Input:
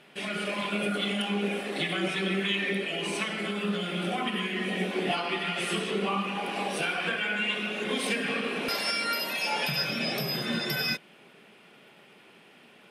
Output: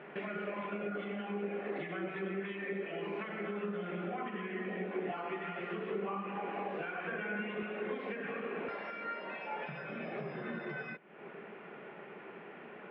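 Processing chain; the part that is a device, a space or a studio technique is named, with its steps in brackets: bass amplifier (compressor 5:1, threshold -44 dBFS, peak gain reduction 17.5 dB; speaker cabinet 89–2000 Hz, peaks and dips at 120 Hz -9 dB, 260 Hz -5 dB, 400 Hz +4 dB); 7.12–7.63 low shelf 440 Hz +8.5 dB; gain +7 dB

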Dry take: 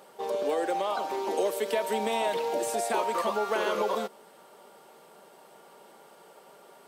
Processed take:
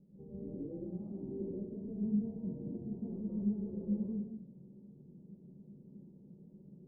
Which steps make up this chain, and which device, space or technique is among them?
club heard from the street (limiter -27 dBFS, peak gain reduction 10 dB; LPF 180 Hz 24 dB/oct; reverb RT60 0.75 s, pre-delay 0.115 s, DRR -7 dB); gain +11 dB

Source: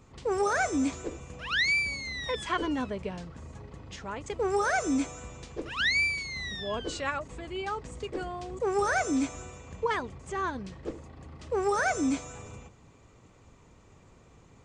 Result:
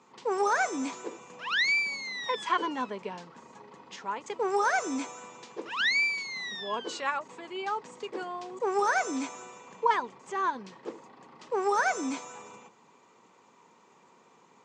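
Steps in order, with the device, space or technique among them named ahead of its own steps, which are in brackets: television speaker (speaker cabinet 220–7600 Hz, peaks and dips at 290 Hz -7 dB, 620 Hz -5 dB, 950 Hz +9 dB)

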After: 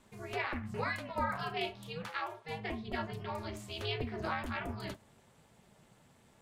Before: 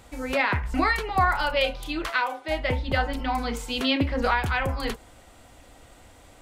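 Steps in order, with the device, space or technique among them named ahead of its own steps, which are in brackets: alien voice (ring modulator 160 Hz; flange 0.35 Hz, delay 4.7 ms, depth 9.7 ms, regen -55%); gain -6 dB

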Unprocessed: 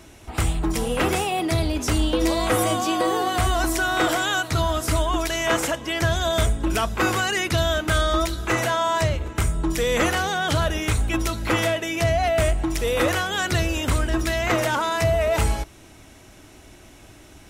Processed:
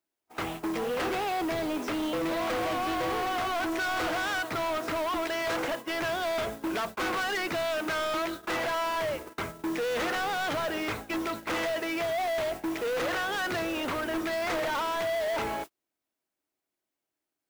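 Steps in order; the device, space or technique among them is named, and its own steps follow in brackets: aircraft radio (BPF 300–2300 Hz; hard clip -28 dBFS, distortion -7 dB; white noise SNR 19 dB; gate -36 dBFS, range -40 dB)

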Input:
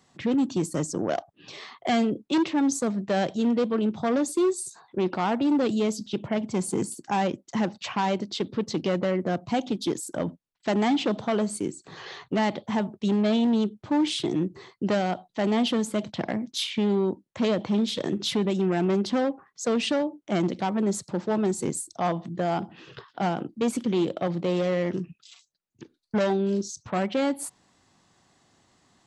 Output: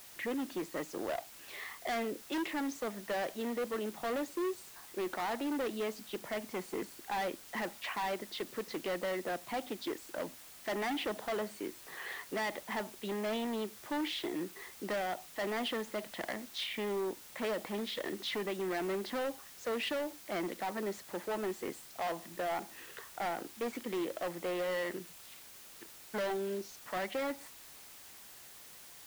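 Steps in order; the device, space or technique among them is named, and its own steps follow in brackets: drive-through speaker (BPF 400–3400 Hz; bell 1900 Hz +9.5 dB 0.41 oct; hard clip -26 dBFS, distortion -10 dB; white noise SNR 15 dB); gain -5.5 dB

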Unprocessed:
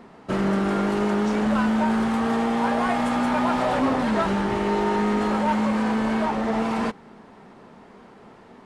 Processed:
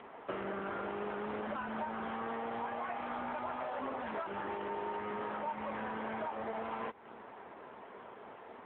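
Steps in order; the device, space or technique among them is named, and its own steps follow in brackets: voicemail (BPF 420–3200 Hz; compressor 10:1, threshold -36 dBFS, peak gain reduction 16.5 dB; gain +1 dB; AMR-NB 7.95 kbps 8000 Hz)

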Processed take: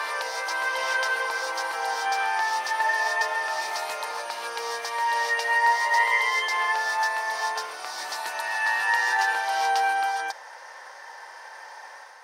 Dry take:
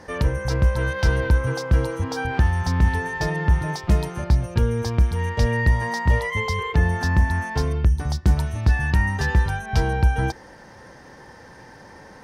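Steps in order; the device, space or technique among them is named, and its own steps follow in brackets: ghost voice (reverse; reverb RT60 2.1 s, pre-delay 0.103 s, DRR -3.5 dB; reverse; HPF 700 Hz 24 dB/oct)

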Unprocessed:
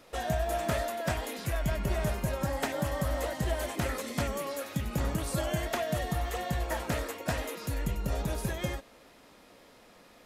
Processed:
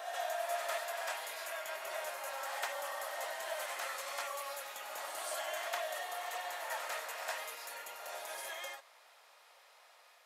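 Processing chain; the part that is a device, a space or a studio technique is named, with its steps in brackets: ghost voice (reverse; reverb RT60 2.2 s, pre-delay 48 ms, DRR 2 dB; reverse; HPF 690 Hz 24 dB/oct); gain -4.5 dB

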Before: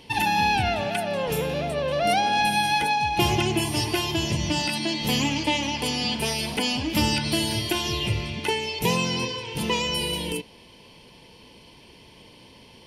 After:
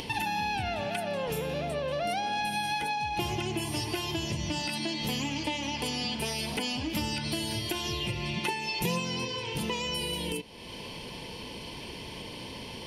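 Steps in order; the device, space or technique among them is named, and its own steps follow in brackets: upward and downward compression (upward compressor, threshold -31 dBFS; compressor 4:1, threshold -30 dBFS, peak gain reduction 11 dB); 8.08–8.99 comb 5.7 ms, depth 67%

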